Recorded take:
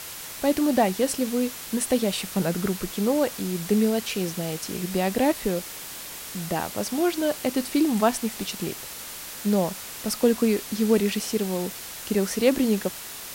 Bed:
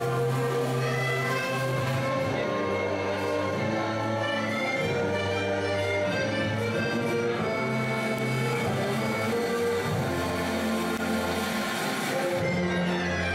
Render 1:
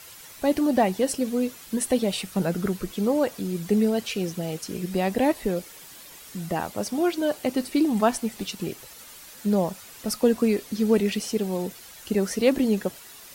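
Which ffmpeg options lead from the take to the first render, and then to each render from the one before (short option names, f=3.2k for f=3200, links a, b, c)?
-af "afftdn=nr=10:nf=-38"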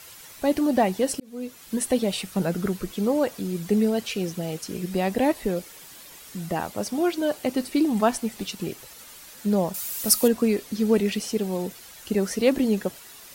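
-filter_complex "[0:a]asettb=1/sr,asplit=3[a][b][c];[a]atrim=end=9.744[d];[b]atrim=start=9.74:end=10.28,asetpts=PTS-STARTPTS,afade=t=in:d=0.004:c=qsin,afade=t=out:st=0.536:d=0.004:c=qsin,aemphasis=mode=production:type=75kf[e];[c]atrim=start=10.276[f];[d][e]acrossfade=d=0.004:c1=hsin:c2=qsin[g];[g][f]acrossfade=d=0.004:c1=qsin:c2=hsin,asplit=2[h][i];[h]atrim=end=1.2,asetpts=PTS-STARTPTS,afade=t=out:st=1.196:d=0.004:c=hsin[j];[i]atrim=start=1.2,asetpts=PTS-STARTPTS,afade=t=in:d=0.56[k];[j][k]concat=n=2:v=0:a=1"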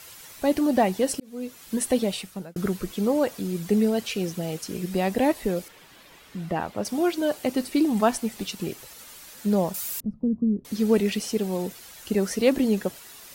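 -filter_complex "[0:a]asettb=1/sr,asplit=3[a][b][c];[a]atrim=end=5.684[d];[b]atrim=start=5.68:end=6.85,asetpts=PTS-STARTPTS,afade=t=in:d=0.004:c=qsin,afade=t=out:st=1.166:d=0.004:c=qsin,acrossover=split=3900[e][f];[f]acompressor=threshold=-58dB:ratio=4:attack=1:release=60[g];[e][g]amix=inputs=2:normalize=0[h];[c]atrim=start=6.846[i];[d][h]acrossfade=d=0.004:c1=hsin:c2=qsin[j];[j][i]acrossfade=d=0.004:c1=qsin:c2=hsin,asettb=1/sr,asplit=3[k][l][m];[k]atrim=end=10.004[n];[l]atrim=start=10:end=10.65,asetpts=PTS-STARTPTS,afade=t=in:d=0.004:c=qsin,afade=t=out:st=0.646:d=0.004:c=qsin,lowpass=f=180:t=q:w=1.6[o];[m]atrim=start=10.646[p];[n][o]acrossfade=d=0.004:c1=hsin:c2=qsin[q];[q][p]acrossfade=d=0.004:c1=qsin:c2=hsin,asplit=2[r][s];[r]atrim=end=2.56,asetpts=PTS-STARTPTS,afade=t=out:st=2.02:d=0.54[t];[s]atrim=start=2.56,asetpts=PTS-STARTPTS,afade=t=in:d=0.004:c=hsin[u];[t][u]concat=n=2:v=0:a=1"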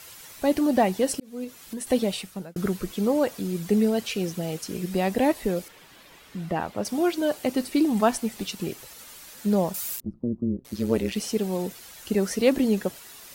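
-filter_complex "[0:a]asettb=1/sr,asplit=3[a][b][c];[a]atrim=end=1.444[d];[b]atrim=start=1.44:end=1.87,asetpts=PTS-STARTPTS,afade=t=in:d=0.004:c=qsin,afade=t=out:st=0.426:d=0.004:c=qsin,acompressor=threshold=-32dB:ratio=3:attack=3.2:release=140:knee=1:detection=peak[e];[c]atrim=start=1.866[f];[d][e]acrossfade=d=0.004:c1=hsin:c2=qsin[g];[g][f]acrossfade=d=0.004:c1=qsin:c2=hsin,asplit=3[h][i][j];[h]afade=t=out:st=9.95:d=0.02[k];[i]tremolo=f=120:d=0.824,afade=t=in:st=9.95:d=0.02,afade=t=out:st=11.15:d=0.02[l];[j]afade=t=in:st=11.15:d=0.02[m];[k][l][m]amix=inputs=3:normalize=0"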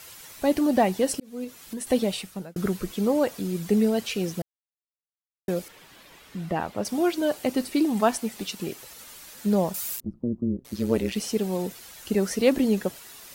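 -filter_complex "[0:a]asettb=1/sr,asplit=3[a][b][c];[a]atrim=end=7.734[d];[b]atrim=start=7.73:end=8.87,asetpts=PTS-STARTPTS,afade=t=in:d=0.004:c=qsin,afade=t=out:st=1.136:d=0.004:c=qsin,lowshelf=f=120:g=-8[e];[c]atrim=start=8.866[f];[d][e]acrossfade=d=0.004:c1=hsin:c2=qsin[g];[g][f]acrossfade=d=0.004:c1=qsin:c2=hsin,asplit=3[h][i][j];[h]atrim=end=4.42,asetpts=PTS-STARTPTS,afade=t=out:st=4.416:d=0.004:c=hsin[k];[i]atrim=start=4.42:end=5.48,asetpts=PTS-STARTPTS,volume=0[l];[j]atrim=start=5.48,asetpts=PTS-STARTPTS,afade=t=in:d=0.004:c=hsin[m];[k][l][m]concat=n=3:v=0:a=1"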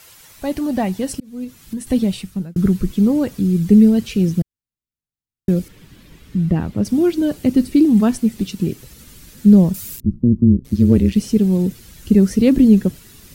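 -af "asubboost=boost=11.5:cutoff=220"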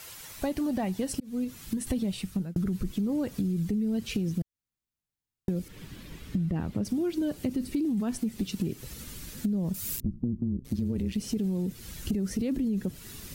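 -af "alimiter=limit=-12dB:level=0:latency=1:release=29,acompressor=threshold=-27dB:ratio=6"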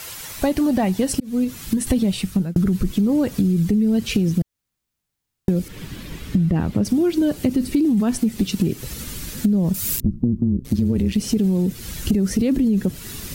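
-af "volume=10.5dB"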